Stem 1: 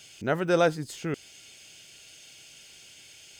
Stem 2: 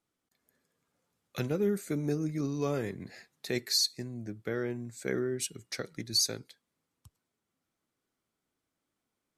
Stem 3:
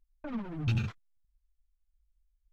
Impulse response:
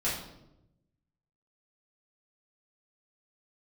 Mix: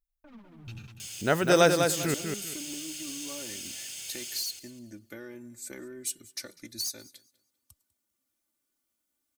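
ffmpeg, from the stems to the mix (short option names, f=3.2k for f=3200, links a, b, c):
-filter_complex "[0:a]adelay=1000,volume=1dB,asplit=2[a][b];[b]volume=-5.5dB[c];[1:a]aecho=1:1:3.4:0.78,aeval=exprs='0.224*(cos(1*acos(clip(val(0)/0.224,-1,1)))-cos(1*PI/2))+0.0891*(cos(2*acos(clip(val(0)/0.224,-1,1)))-cos(2*PI/2))+0.02*(cos(4*acos(clip(val(0)/0.224,-1,1)))-cos(4*PI/2))+0.0251*(cos(5*acos(clip(val(0)/0.224,-1,1)))-cos(5*PI/2))':c=same,acompressor=threshold=-29dB:ratio=6,adelay=650,volume=-11dB,asplit=2[d][e];[e]volume=-22dB[f];[2:a]volume=-14.5dB,asplit=2[g][h];[h]volume=-8dB[i];[c][f][i]amix=inputs=3:normalize=0,aecho=0:1:198|396|594|792:1|0.25|0.0625|0.0156[j];[a][d][g][j]amix=inputs=4:normalize=0,aemphasis=mode=production:type=75kf"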